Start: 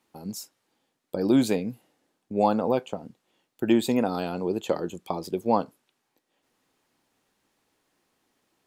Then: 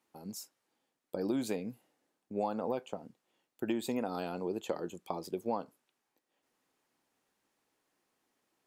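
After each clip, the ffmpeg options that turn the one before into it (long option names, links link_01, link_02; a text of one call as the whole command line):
ffmpeg -i in.wav -af "lowshelf=frequency=170:gain=-7,acompressor=threshold=-23dB:ratio=6,equalizer=frequency=3700:width=1.5:gain=-2.5,volume=-6dB" out.wav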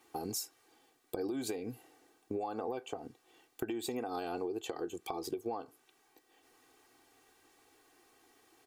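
ffmpeg -i in.wav -af "aecho=1:1:2.6:0.75,alimiter=level_in=6.5dB:limit=-24dB:level=0:latency=1:release=456,volume=-6.5dB,acompressor=threshold=-47dB:ratio=4,volume=11.5dB" out.wav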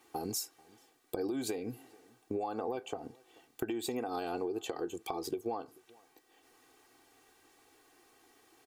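ffmpeg -i in.wav -filter_complex "[0:a]asplit=2[link_01][link_02];[link_02]adelay=437.3,volume=-25dB,highshelf=frequency=4000:gain=-9.84[link_03];[link_01][link_03]amix=inputs=2:normalize=0,volume=1.5dB" out.wav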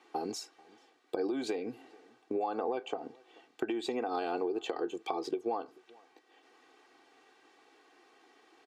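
ffmpeg -i in.wav -af "highpass=270,lowpass=4200,volume=3.5dB" out.wav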